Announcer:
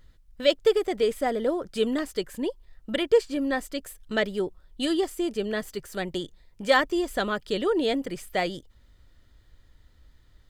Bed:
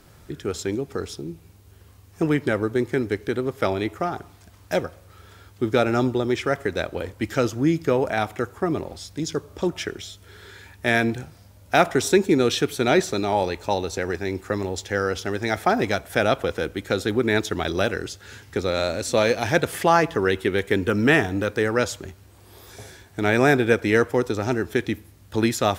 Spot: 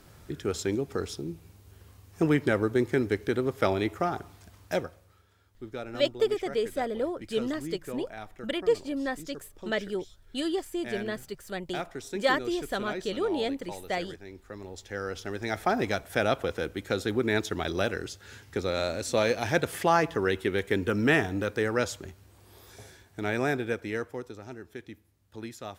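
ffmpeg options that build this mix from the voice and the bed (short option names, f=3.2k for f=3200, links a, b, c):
-filter_complex "[0:a]adelay=5550,volume=-4.5dB[a];[1:a]volume=10dB,afade=t=out:st=4.47:d=0.79:silence=0.16788,afade=t=in:st=14.48:d=1.33:silence=0.237137,afade=t=out:st=22.32:d=2.1:silence=0.211349[b];[a][b]amix=inputs=2:normalize=0"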